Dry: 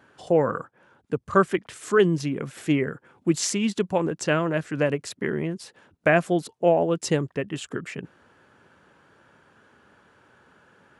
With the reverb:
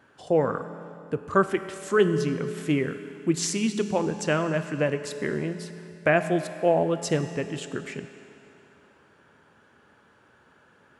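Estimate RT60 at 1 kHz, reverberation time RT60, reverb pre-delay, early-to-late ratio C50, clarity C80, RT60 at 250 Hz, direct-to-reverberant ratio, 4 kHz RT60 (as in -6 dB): 2.9 s, 2.9 s, 5 ms, 10.0 dB, 11.0 dB, 2.9 s, 9.0 dB, 2.7 s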